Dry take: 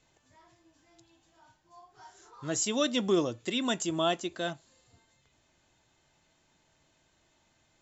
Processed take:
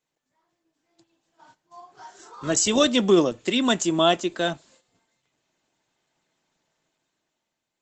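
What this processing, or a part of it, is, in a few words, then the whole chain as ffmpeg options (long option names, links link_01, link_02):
video call: -af "highpass=frequency=150:width=0.5412,highpass=frequency=150:width=1.3066,dynaudnorm=framelen=220:gausssize=9:maxgain=9.5dB,agate=range=-12dB:threshold=-53dB:ratio=16:detection=peak" -ar 48000 -c:a libopus -b:a 16k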